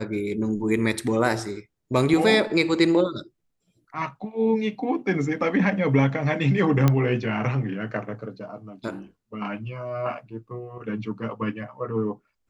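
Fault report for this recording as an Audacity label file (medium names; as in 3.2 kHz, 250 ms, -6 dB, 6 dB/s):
6.880000	6.880000	pop -7 dBFS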